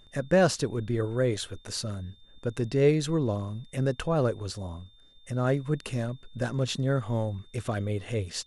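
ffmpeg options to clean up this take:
-af "bandreject=f=3.6k:w=30"

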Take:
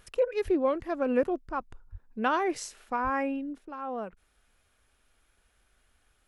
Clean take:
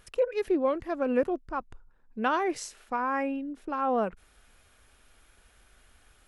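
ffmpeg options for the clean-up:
-filter_complex "[0:a]asplit=3[a][b][c];[a]afade=t=out:st=0.44:d=0.02[d];[b]highpass=f=140:w=0.5412,highpass=f=140:w=1.3066,afade=t=in:st=0.44:d=0.02,afade=t=out:st=0.56:d=0.02[e];[c]afade=t=in:st=0.56:d=0.02[f];[d][e][f]amix=inputs=3:normalize=0,asplit=3[g][h][i];[g]afade=t=out:st=1.91:d=0.02[j];[h]highpass=f=140:w=0.5412,highpass=f=140:w=1.3066,afade=t=in:st=1.91:d=0.02,afade=t=out:st=2.03:d=0.02[k];[i]afade=t=in:st=2.03:d=0.02[l];[j][k][l]amix=inputs=3:normalize=0,asplit=3[m][n][o];[m]afade=t=out:st=3.03:d=0.02[p];[n]highpass=f=140:w=0.5412,highpass=f=140:w=1.3066,afade=t=in:st=3.03:d=0.02,afade=t=out:st=3.15:d=0.02[q];[o]afade=t=in:st=3.15:d=0.02[r];[p][q][r]amix=inputs=3:normalize=0,asetnsamples=n=441:p=0,asendcmd='3.58 volume volume 8.5dB',volume=0dB"

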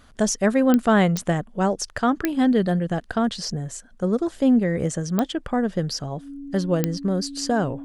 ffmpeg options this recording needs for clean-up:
-af "adeclick=t=4,bandreject=f=280:w=30"

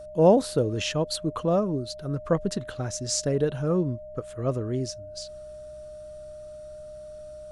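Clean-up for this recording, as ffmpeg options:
-af "bandreject=f=63.8:t=h:w=4,bandreject=f=127.6:t=h:w=4,bandreject=f=191.4:t=h:w=4,bandreject=f=610:w=30"

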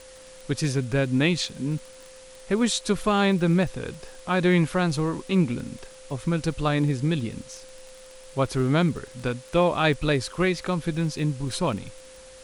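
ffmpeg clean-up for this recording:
-af "adeclick=t=4,bandreject=f=520:w=30,afwtdn=0.004"

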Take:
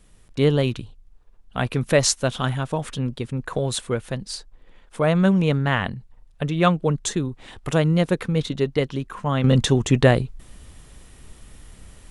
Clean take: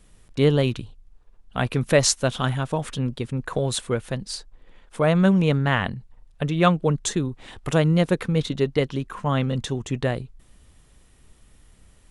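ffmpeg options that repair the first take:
-af "asetnsamples=n=441:p=0,asendcmd='9.44 volume volume -9dB',volume=0dB"

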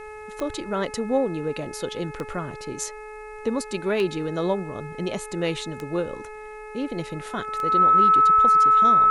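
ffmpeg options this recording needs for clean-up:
-af "adeclick=t=4,bandreject=f=427.1:t=h:w=4,bandreject=f=854.2:t=h:w=4,bandreject=f=1.2813k:t=h:w=4,bandreject=f=1.7084k:t=h:w=4,bandreject=f=2.1355k:t=h:w=4,bandreject=f=2.5626k:t=h:w=4,bandreject=f=1.3k:w=30,agate=range=-21dB:threshold=-31dB"

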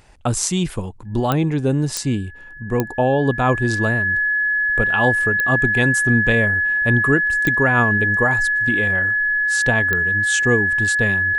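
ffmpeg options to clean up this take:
-af "adeclick=t=4,bandreject=f=1.7k:w=30"

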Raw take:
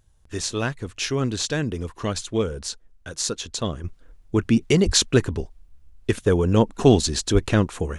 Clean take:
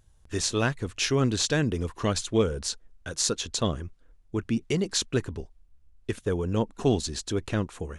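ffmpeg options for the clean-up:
-filter_complex "[0:a]asplit=3[a][b][c];[a]afade=t=out:st=4.85:d=0.02[d];[b]highpass=f=140:w=0.5412,highpass=f=140:w=1.3066,afade=t=in:st=4.85:d=0.02,afade=t=out:st=4.97:d=0.02[e];[c]afade=t=in:st=4.97:d=0.02[f];[d][e][f]amix=inputs=3:normalize=0,asplit=3[g][h][i];[g]afade=t=out:st=7.33:d=0.02[j];[h]highpass=f=140:w=0.5412,highpass=f=140:w=1.3066,afade=t=in:st=7.33:d=0.02,afade=t=out:st=7.45:d=0.02[k];[i]afade=t=in:st=7.45:d=0.02[l];[j][k][l]amix=inputs=3:normalize=0,asetnsamples=n=441:p=0,asendcmd='3.84 volume volume -8.5dB',volume=0dB"

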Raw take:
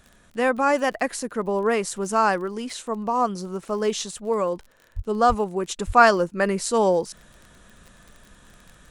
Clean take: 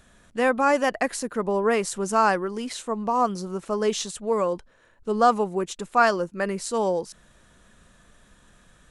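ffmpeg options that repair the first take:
-filter_complex "[0:a]adeclick=t=4,asplit=3[a][b][c];[a]afade=t=out:st=4.95:d=0.02[d];[b]highpass=f=140:w=0.5412,highpass=f=140:w=1.3066,afade=t=in:st=4.95:d=0.02,afade=t=out:st=5.07:d=0.02[e];[c]afade=t=in:st=5.07:d=0.02[f];[d][e][f]amix=inputs=3:normalize=0,asplit=3[g][h][i];[g]afade=t=out:st=5.28:d=0.02[j];[h]highpass=f=140:w=0.5412,highpass=f=140:w=1.3066,afade=t=in:st=5.28:d=0.02,afade=t=out:st=5.4:d=0.02[k];[i]afade=t=in:st=5.4:d=0.02[l];[j][k][l]amix=inputs=3:normalize=0,asplit=3[m][n][o];[m]afade=t=out:st=5.86:d=0.02[p];[n]highpass=f=140:w=0.5412,highpass=f=140:w=1.3066,afade=t=in:st=5.86:d=0.02,afade=t=out:st=5.98:d=0.02[q];[o]afade=t=in:st=5.98:d=0.02[r];[p][q][r]amix=inputs=3:normalize=0,asetnsamples=n=441:p=0,asendcmd='5.69 volume volume -4.5dB',volume=0dB"

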